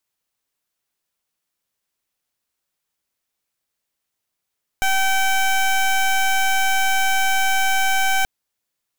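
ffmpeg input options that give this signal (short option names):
-f lavfi -i "aevalsrc='0.133*(2*lt(mod(770*t,1),0.17)-1)':d=3.43:s=44100"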